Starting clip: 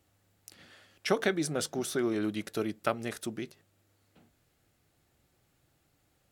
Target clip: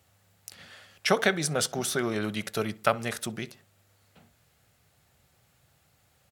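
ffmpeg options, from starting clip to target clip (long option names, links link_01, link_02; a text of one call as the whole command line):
ffmpeg -i in.wav -filter_complex "[0:a]highpass=57,equalizer=frequency=310:width_type=o:width=0.68:gain=-12,asplit=2[link_01][link_02];[link_02]adelay=64,lowpass=frequency=2000:poles=1,volume=-19.5dB,asplit=2[link_03][link_04];[link_04]adelay=64,lowpass=frequency=2000:poles=1,volume=0.39,asplit=2[link_05][link_06];[link_06]adelay=64,lowpass=frequency=2000:poles=1,volume=0.39[link_07];[link_01][link_03][link_05][link_07]amix=inputs=4:normalize=0,volume=7dB" out.wav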